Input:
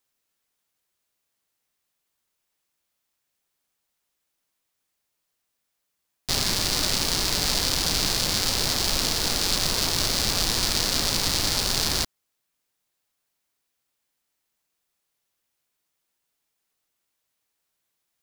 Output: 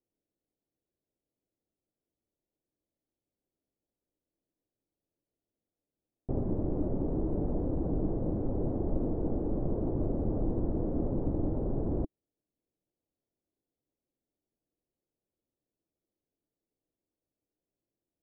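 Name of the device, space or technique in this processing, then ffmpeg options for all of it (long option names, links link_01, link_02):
under water: -af "lowpass=frequency=580:width=0.5412,lowpass=frequency=580:width=1.3066,equalizer=frequency=310:width_type=o:width=0.45:gain=6"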